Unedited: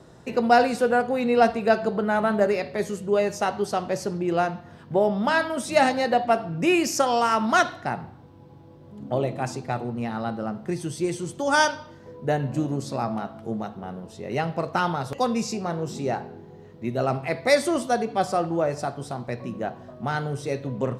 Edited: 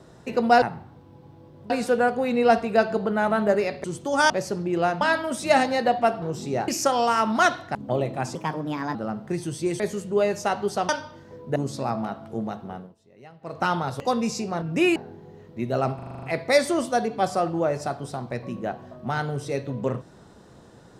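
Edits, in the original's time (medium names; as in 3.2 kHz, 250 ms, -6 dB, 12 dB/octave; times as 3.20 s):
2.76–3.85 s: swap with 11.18–11.64 s
4.56–5.27 s: delete
6.48–6.82 s: swap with 15.75–16.21 s
7.89–8.97 s: move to 0.62 s
9.57–10.33 s: speed 127%
12.31–12.69 s: delete
13.85–14.77 s: dip -21 dB, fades 0.23 s
17.20 s: stutter 0.04 s, 8 plays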